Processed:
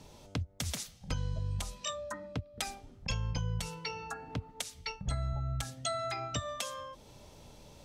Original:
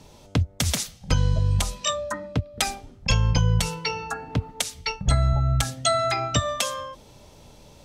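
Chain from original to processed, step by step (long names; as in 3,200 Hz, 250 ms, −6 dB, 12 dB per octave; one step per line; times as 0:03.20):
downward compressor 1.5 to 1, threshold −43 dBFS, peak gain reduction 10 dB
level −4.5 dB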